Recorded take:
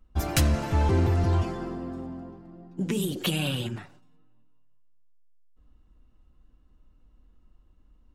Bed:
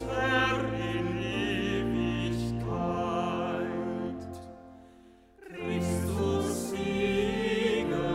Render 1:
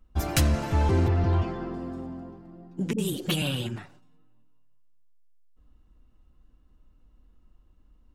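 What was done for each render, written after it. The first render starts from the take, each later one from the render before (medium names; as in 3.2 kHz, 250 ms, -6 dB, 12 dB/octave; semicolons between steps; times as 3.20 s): 1.08–1.74 s: low-pass 3.8 kHz; 2.93–3.42 s: phase dispersion highs, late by 53 ms, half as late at 330 Hz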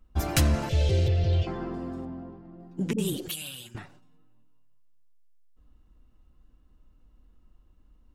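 0.69–1.47 s: FFT filter 160 Hz 0 dB, 230 Hz -18 dB, 550 Hz +5 dB, 980 Hz -22 dB, 3.3 kHz +9 dB, 11 kHz -1 dB; 2.05–2.60 s: distance through air 180 m; 3.28–3.75 s: pre-emphasis filter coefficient 0.9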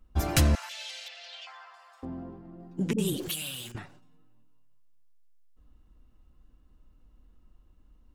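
0.55–2.03 s: Bessel high-pass 1.4 kHz, order 8; 3.20–3.72 s: jump at every zero crossing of -42.5 dBFS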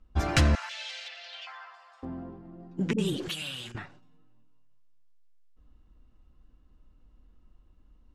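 low-pass 6.1 kHz 12 dB/octave; dynamic bell 1.6 kHz, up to +5 dB, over -52 dBFS, Q 0.99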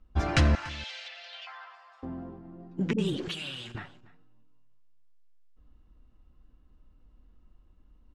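distance through air 66 m; delay 288 ms -20.5 dB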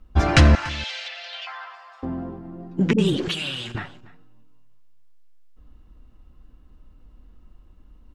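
trim +9 dB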